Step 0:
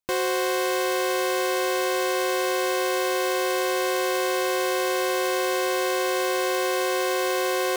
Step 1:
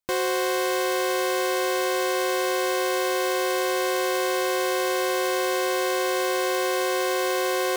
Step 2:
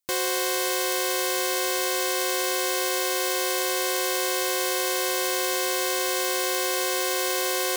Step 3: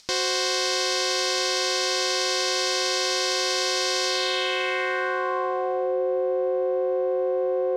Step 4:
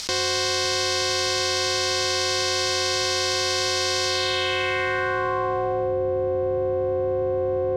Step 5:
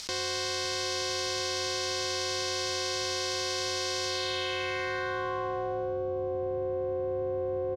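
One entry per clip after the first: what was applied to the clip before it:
notch 2700 Hz, Q 21
high shelf 2900 Hz +12 dB; gain -4.5 dB
upward compressor, threshold -29 dBFS; low-pass sweep 5100 Hz -> 540 Hz, 4.06–5.98
octaver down 2 oct, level -4 dB; fast leveller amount 70%
echo 0.749 s -17 dB; gain -8.5 dB

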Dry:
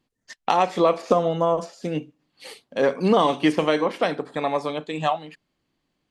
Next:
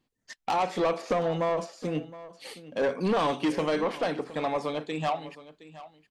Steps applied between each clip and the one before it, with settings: soft clip -18 dBFS, distortion -10 dB; echo 0.717 s -17 dB; gain -2.5 dB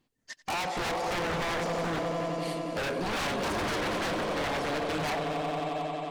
swelling echo 90 ms, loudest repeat 5, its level -12 dB; wavefolder -27 dBFS; gain +1.5 dB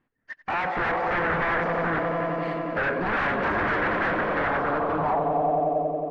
AGC gain up to 3.5 dB; low-pass sweep 1700 Hz -> 560 Hz, 4.37–5.92

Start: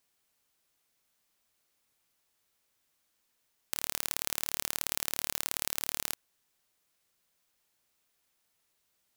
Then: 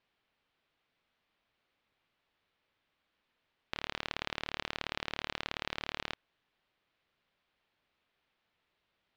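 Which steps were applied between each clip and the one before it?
LPF 3600 Hz 24 dB/oct; gain +2.5 dB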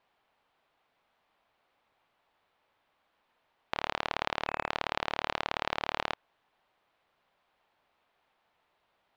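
spectral gain 4.48–4.7, 2600–7000 Hz -10 dB; bell 820 Hz +11 dB 1.6 oct; gain +1 dB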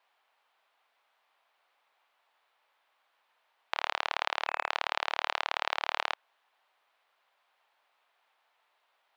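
HPF 700 Hz 12 dB/oct; gain +2.5 dB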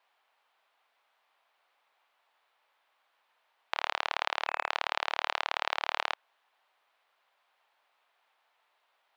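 nothing audible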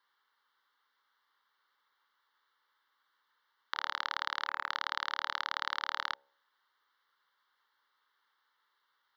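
fixed phaser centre 2500 Hz, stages 6; de-hum 69.59 Hz, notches 13

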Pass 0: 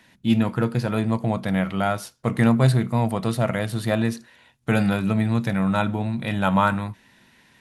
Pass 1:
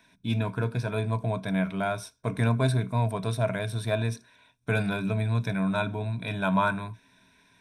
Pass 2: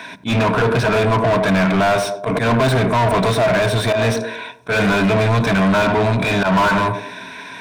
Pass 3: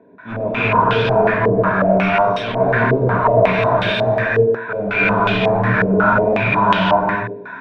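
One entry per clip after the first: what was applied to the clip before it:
ripple EQ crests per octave 1.6, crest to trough 12 dB; gain -7 dB
narrowing echo 0.101 s, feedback 41%, band-pass 390 Hz, level -12.5 dB; auto swell 0.129 s; overdrive pedal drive 35 dB, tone 1700 Hz, clips at -12 dBFS; gain +4.5 dB
non-linear reverb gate 0.37 s rising, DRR -7.5 dB; stepped low-pass 5.5 Hz 440–3200 Hz; gain -11 dB

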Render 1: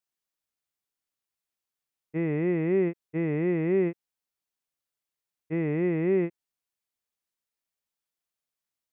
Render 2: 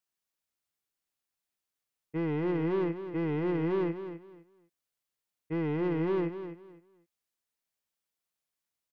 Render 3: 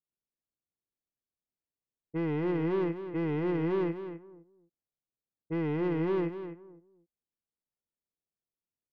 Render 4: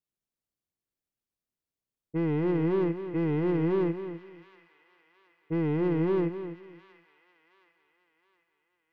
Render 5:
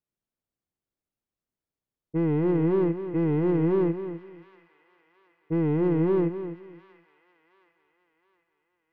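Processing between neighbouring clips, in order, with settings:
soft clip -26 dBFS, distortion -11 dB; feedback echo 0.255 s, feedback 23%, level -10.5 dB
low-pass opened by the level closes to 470 Hz, open at -29.5 dBFS
low shelf 440 Hz +5 dB; thin delay 0.719 s, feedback 49%, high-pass 1700 Hz, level -12 dB
high shelf 2100 Hz -10.5 dB; gain +3.5 dB

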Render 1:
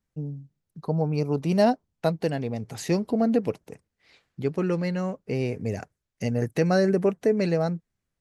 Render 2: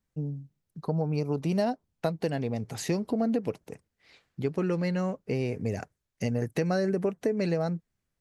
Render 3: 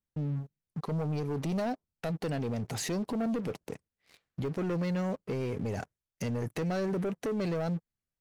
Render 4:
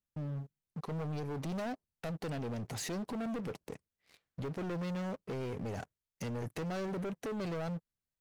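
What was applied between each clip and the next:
compressor 5:1, threshold -24 dBFS, peak gain reduction 8.5 dB
sample leveller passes 3; limiter -22 dBFS, peak gain reduction 8 dB; gain -5.5 dB
hard clip -32 dBFS, distortion -15 dB; gain -3.5 dB

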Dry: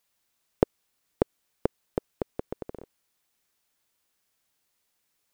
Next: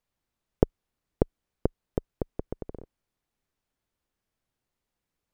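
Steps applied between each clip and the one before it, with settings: tilt -3 dB/oct; gain -5 dB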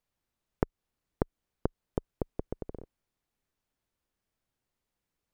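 compressor, threshold -22 dBFS, peak gain reduction 9.5 dB; gain -1.5 dB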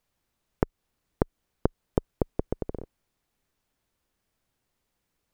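limiter -11.5 dBFS, peak gain reduction 3.5 dB; gain +7 dB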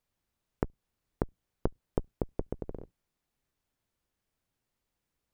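octaver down 1 oct, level -3 dB; gain -6 dB

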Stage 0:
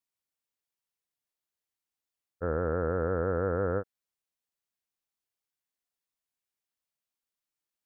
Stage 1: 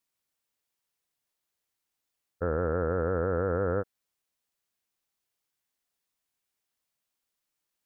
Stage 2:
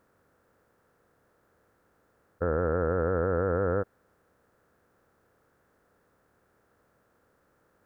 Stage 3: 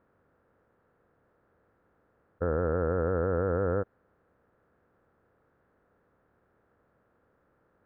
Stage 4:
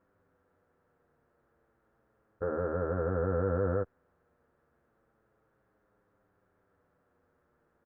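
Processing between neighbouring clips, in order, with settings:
limiter -24 dBFS, peak gain reduction 6 dB; gain +6 dB
per-bin compression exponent 0.6
air absorption 430 m
endless flanger 7.6 ms -0.31 Hz

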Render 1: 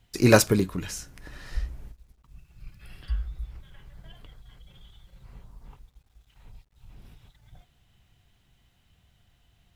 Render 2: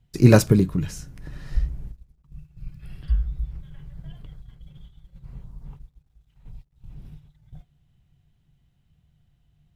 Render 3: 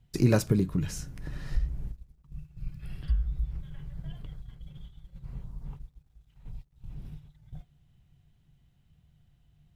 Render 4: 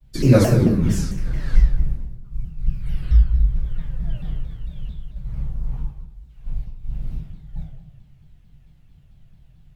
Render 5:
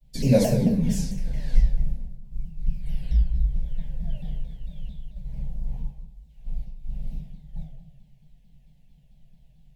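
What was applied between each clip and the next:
bell 150 Hz +11.5 dB 0.29 oct; gate -48 dBFS, range -7 dB; low shelf 410 Hz +11 dB; gain -4 dB
compressor 2:1, threshold -26 dBFS, peak gain reduction 10.5 dB
reverb RT60 0.90 s, pre-delay 3 ms, DRR -15 dB; shaped vibrato saw down 4.5 Hz, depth 250 cents; gain -6 dB
fixed phaser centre 340 Hz, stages 6; gain -2 dB

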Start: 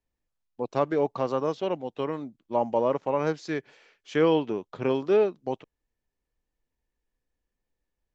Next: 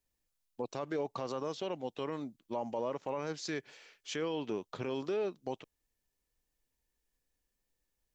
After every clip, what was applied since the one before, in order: high shelf 3400 Hz +11.5 dB; in parallel at -2 dB: compressor, threshold -31 dBFS, peak gain reduction 13.5 dB; on the sum: limiter -18.5 dBFS, peak gain reduction 9.5 dB; gain -8 dB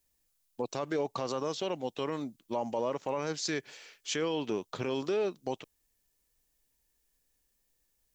high shelf 4900 Hz +8 dB; gain +3.5 dB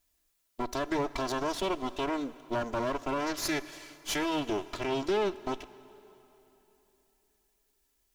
minimum comb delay 3 ms; plate-style reverb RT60 3.4 s, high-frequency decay 0.9×, DRR 16 dB; gain +3 dB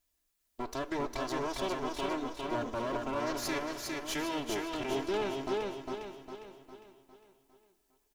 on a send: feedback echo 0.405 s, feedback 46%, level -3 dB; on the sum: flange 1.2 Hz, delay 6.3 ms, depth 8.8 ms, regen +87%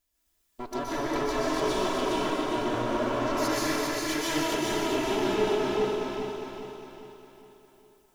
plate-style reverb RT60 2.2 s, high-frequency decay 0.95×, pre-delay 0.11 s, DRR -6.5 dB

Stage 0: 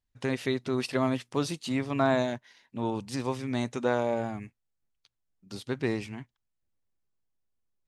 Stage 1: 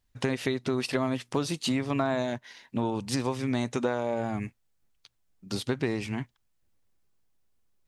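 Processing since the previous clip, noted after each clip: compressor, threshold -34 dBFS, peak gain reduction 13 dB; gain +9 dB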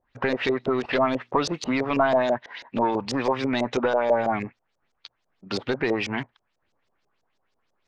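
overdrive pedal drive 18 dB, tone 1900 Hz, clips at -12.5 dBFS; LFO low-pass saw up 6.1 Hz 490–6800 Hz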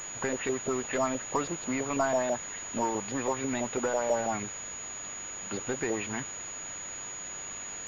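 requantised 6-bit, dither triangular; pulse-width modulation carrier 6800 Hz; gain -7 dB

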